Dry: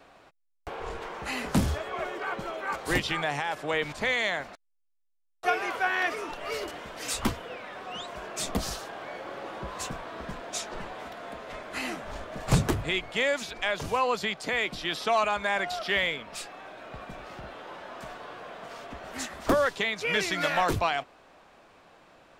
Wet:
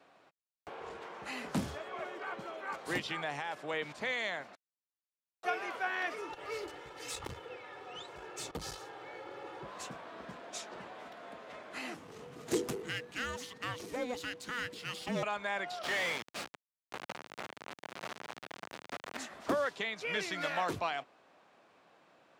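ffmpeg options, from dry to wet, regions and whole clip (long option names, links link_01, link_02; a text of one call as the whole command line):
ffmpeg -i in.wav -filter_complex "[0:a]asettb=1/sr,asplit=3[link_01][link_02][link_03];[link_01]atrim=end=6.184[link_04];[link_02]atrim=start=6.18:end=9.64,asetpts=PTS-STARTPTS,afade=type=in:duration=0.004:curve=qsin,afade=type=out:start_time=3.456:duration=0.004:curve=qsin,lowshelf=frequency=120:gain=12,aecho=1:1:2.3:0.82,atrim=end_sample=152586,aeval=exprs='(tanh(12.6*val(0)+0.45)-tanh(0.45))/12.6':channel_layout=same[link_05];[link_03]atrim=start=9.636[link_06];[link_04][link_05]acrossfade=duration=0.004:curve1=hsin:curve2=qsin[link_07];[link_07][link_06]acrossfade=duration=0.004:curve1=qsin:curve2=hsin,asettb=1/sr,asplit=3[link_08][link_09][link_10];[link_08]atrim=end=11.944[link_11];[link_09]atrim=start=11.94:end=15.23,asetpts=PTS-STARTPTS,afade=type=in:duration=0.004:curve=qsin,afade=type=out:start_time=3.286:duration=0.004:curve=qsin,aeval=exprs='if(lt(val(0),0),0.447*val(0),val(0))':channel_layout=same,highshelf=frequency=7200:gain=11,afreqshift=-490[link_12];[link_10]atrim=start=15.226[link_13];[link_11][link_12]acrossfade=duration=0.004:curve1=hsin:curve2=qsin[link_14];[link_14][link_13]acrossfade=duration=0.004:curve1=qsin:curve2=hsin,asettb=1/sr,asplit=3[link_15][link_16][link_17];[link_15]atrim=end=15.834[link_18];[link_16]atrim=start=15.83:end=19.17,asetpts=PTS-STARTPTS,afade=type=in:duration=0.004:curve=qsin,afade=type=out:start_time=3.336:duration=0.004:curve=qsin,flanger=delay=0.6:depth=3.5:regen=87:speed=1.9:shape=sinusoidal,aeval=exprs='val(0)*gte(abs(val(0)),0.0112)':channel_layout=same,asplit=2[link_19][link_20];[link_20]highpass=frequency=720:poles=1,volume=35dB,asoftclip=type=tanh:threshold=-18dB[link_21];[link_19][link_21]amix=inputs=2:normalize=0,lowpass=frequency=3400:poles=1,volume=-6dB[link_22];[link_17]atrim=start=19.166[link_23];[link_18][link_22]acrossfade=duration=0.004:curve1=hsin:curve2=qsin[link_24];[link_24][link_23]acrossfade=duration=0.004:curve1=qsin:curve2=hsin,highpass=140,highshelf=frequency=11000:gain=-7.5,volume=-8dB" out.wav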